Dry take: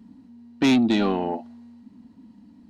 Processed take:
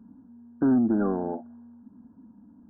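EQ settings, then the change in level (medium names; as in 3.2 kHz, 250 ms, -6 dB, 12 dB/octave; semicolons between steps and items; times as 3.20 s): dynamic bell 930 Hz, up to -6 dB, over -42 dBFS, Q 2; brick-wall FIR low-pass 1.7 kHz; -2.5 dB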